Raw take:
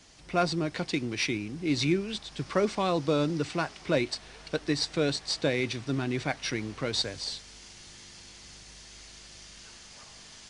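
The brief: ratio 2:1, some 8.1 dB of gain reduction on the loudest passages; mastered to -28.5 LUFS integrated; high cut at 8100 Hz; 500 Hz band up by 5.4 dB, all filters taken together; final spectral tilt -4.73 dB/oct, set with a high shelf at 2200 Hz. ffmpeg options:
-af "lowpass=8.1k,equalizer=f=500:t=o:g=7,highshelf=f=2.2k:g=-6,acompressor=threshold=-32dB:ratio=2,volume=5dB"

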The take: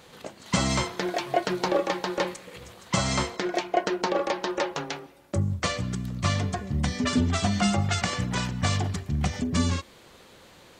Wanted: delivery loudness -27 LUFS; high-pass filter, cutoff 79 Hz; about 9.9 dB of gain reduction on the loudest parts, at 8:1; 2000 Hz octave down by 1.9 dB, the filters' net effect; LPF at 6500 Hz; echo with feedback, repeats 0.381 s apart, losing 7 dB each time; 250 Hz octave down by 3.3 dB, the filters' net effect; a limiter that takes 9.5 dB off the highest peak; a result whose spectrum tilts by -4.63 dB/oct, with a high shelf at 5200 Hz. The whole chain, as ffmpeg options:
-af "highpass=79,lowpass=6.5k,equalizer=f=250:t=o:g=-4.5,equalizer=f=2k:t=o:g=-3,highshelf=f=5.2k:g=5.5,acompressor=threshold=-31dB:ratio=8,alimiter=level_in=1dB:limit=-24dB:level=0:latency=1,volume=-1dB,aecho=1:1:381|762|1143|1524|1905:0.447|0.201|0.0905|0.0407|0.0183,volume=9.5dB"

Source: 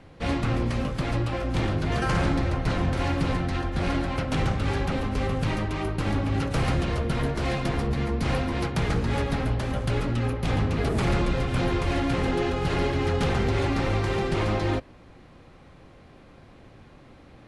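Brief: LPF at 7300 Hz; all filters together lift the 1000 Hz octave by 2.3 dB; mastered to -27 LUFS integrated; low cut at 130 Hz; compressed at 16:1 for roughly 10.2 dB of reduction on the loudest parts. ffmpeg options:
-af "highpass=130,lowpass=7.3k,equalizer=f=1k:t=o:g=3,acompressor=threshold=-32dB:ratio=16,volume=9.5dB"

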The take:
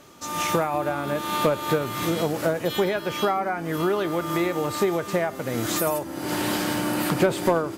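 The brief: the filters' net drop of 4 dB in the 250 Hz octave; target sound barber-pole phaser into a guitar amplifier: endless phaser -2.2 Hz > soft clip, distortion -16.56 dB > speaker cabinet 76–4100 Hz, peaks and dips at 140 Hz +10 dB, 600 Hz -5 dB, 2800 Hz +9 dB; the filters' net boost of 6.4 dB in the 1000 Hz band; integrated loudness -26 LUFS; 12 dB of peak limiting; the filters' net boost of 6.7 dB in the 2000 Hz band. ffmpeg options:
-filter_complex "[0:a]equalizer=f=250:t=o:g=-9,equalizer=f=1k:t=o:g=8,equalizer=f=2k:t=o:g=4,alimiter=limit=-17dB:level=0:latency=1,asplit=2[a][b];[b]afreqshift=-2.2[c];[a][c]amix=inputs=2:normalize=1,asoftclip=threshold=-24dB,highpass=76,equalizer=f=140:t=q:w=4:g=10,equalizer=f=600:t=q:w=4:g=-5,equalizer=f=2.8k:t=q:w=4:g=9,lowpass=f=4.1k:w=0.5412,lowpass=f=4.1k:w=1.3066,volume=4.5dB"

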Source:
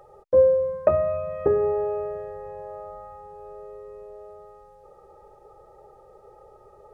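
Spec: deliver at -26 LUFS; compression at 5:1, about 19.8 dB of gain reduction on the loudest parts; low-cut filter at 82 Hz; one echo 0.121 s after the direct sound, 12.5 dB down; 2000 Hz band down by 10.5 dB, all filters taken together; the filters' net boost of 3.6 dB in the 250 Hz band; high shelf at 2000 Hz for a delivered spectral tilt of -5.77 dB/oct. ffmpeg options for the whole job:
-af "highpass=82,equalizer=f=250:t=o:g=7,highshelf=f=2k:g=-8.5,equalizer=f=2k:t=o:g=-8.5,acompressor=threshold=-36dB:ratio=5,aecho=1:1:121:0.237,volume=14.5dB"

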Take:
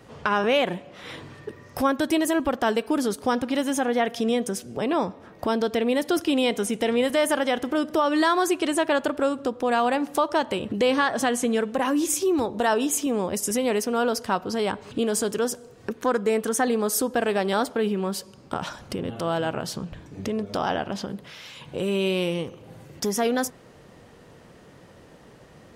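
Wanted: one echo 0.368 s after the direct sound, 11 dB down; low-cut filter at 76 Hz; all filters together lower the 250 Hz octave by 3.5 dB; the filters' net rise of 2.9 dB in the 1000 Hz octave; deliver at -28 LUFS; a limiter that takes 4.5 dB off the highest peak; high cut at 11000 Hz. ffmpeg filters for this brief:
-af "highpass=76,lowpass=11k,equalizer=f=250:t=o:g=-4.5,equalizer=f=1k:t=o:g=4,alimiter=limit=-13dB:level=0:latency=1,aecho=1:1:368:0.282,volume=-2.5dB"

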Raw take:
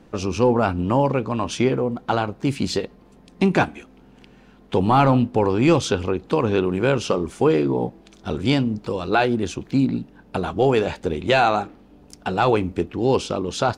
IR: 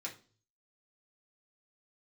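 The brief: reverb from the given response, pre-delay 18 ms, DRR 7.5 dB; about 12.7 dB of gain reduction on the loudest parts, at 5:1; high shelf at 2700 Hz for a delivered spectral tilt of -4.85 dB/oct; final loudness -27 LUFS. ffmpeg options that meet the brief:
-filter_complex "[0:a]highshelf=f=2.7k:g=6.5,acompressor=threshold=-27dB:ratio=5,asplit=2[a][b];[1:a]atrim=start_sample=2205,adelay=18[c];[b][c]afir=irnorm=-1:irlink=0,volume=-7dB[d];[a][d]amix=inputs=2:normalize=0,volume=3.5dB"

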